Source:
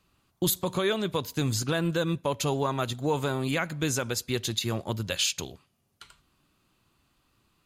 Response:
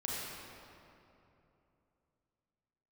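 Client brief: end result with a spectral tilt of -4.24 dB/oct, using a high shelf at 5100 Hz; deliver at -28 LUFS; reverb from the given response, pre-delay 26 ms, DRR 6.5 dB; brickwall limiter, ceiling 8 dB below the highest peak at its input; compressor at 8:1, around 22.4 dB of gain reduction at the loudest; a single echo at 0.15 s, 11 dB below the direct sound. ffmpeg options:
-filter_complex "[0:a]highshelf=f=5.1k:g=8,acompressor=threshold=-41dB:ratio=8,alimiter=level_in=10dB:limit=-24dB:level=0:latency=1,volume=-10dB,aecho=1:1:150:0.282,asplit=2[a][b];[1:a]atrim=start_sample=2205,adelay=26[c];[b][c]afir=irnorm=-1:irlink=0,volume=-10dB[d];[a][d]amix=inputs=2:normalize=0,volume=16.5dB"

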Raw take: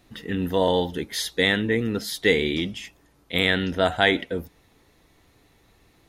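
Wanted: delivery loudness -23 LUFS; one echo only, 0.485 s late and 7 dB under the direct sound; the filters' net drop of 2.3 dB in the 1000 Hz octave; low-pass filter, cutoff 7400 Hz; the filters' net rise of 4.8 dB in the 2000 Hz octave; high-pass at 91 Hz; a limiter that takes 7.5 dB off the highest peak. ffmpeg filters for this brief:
-af "highpass=91,lowpass=7.4k,equalizer=f=1k:t=o:g=-5,equalizer=f=2k:t=o:g=6.5,alimiter=limit=-9.5dB:level=0:latency=1,aecho=1:1:485:0.447,volume=1dB"

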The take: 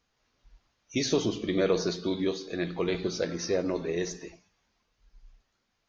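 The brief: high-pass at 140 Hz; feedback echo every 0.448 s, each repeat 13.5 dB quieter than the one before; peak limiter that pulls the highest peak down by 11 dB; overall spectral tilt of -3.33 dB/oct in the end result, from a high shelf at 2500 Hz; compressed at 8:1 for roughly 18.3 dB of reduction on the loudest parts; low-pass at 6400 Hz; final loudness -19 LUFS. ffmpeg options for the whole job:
-af "highpass=140,lowpass=6.4k,highshelf=f=2.5k:g=7,acompressor=threshold=-40dB:ratio=8,alimiter=level_in=12dB:limit=-24dB:level=0:latency=1,volume=-12dB,aecho=1:1:448|896:0.211|0.0444,volume=27dB"

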